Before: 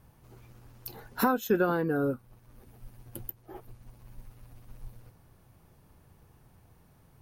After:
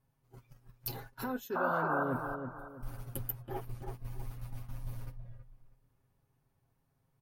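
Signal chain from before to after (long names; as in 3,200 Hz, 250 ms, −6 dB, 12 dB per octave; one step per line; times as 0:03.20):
comb filter 7.4 ms, depth 60%
noise gate −47 dBFS, range −15 dB
reversed playback
downward compressor 16 to 1, threshold −39 dBFS, peak gain reduction 21.5 dB
reversed playback
sound drawn into the spectrogram noise, 0:01.55–0:02.04, 520–1,600 Hz −39 dBFS
on a send: delay with a low-pass on its return 324 ms, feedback 34%, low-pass 2,900 Hz, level −6.5 dB
on the sum: noise reduction from a noise print of the clip's start 9 dB
level +5.5 dB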